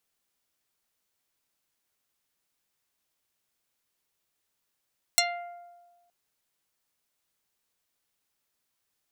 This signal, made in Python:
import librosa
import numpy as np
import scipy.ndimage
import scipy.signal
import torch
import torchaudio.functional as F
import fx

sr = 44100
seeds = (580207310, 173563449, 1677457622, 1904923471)

y = fx.pluck(sr, length_s=0.92, note=77, decay_s=1.38, pick=0.42, brightness='dark')